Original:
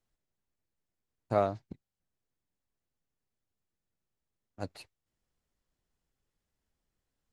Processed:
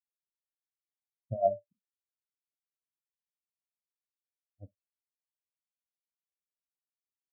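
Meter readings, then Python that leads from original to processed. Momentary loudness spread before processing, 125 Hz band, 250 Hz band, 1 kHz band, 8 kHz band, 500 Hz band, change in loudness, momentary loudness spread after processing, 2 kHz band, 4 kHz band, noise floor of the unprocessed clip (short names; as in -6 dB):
23 LU, -3.5 dB, -11.0 dB, -1.0 dB, under -15 dB, +0.5 dB, +1.5 dB, 12 LU, under -30 dB, under -25 dB, under -85 dBFS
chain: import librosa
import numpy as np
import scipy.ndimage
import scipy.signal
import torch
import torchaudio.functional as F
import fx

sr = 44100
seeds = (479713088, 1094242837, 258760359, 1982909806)

y = fx.over_compress(x, sr, threshold_db=-29.0, ratio=-0.5)
y = fx.rev_schroeder(y, sr, rt60_s=0.42, comb_ms=29, drr_db=6.5)
y = fx.spectral_expand(y, sr, expansion=4.0)
y = y * 10.0 ** (-1.0 / 20.0)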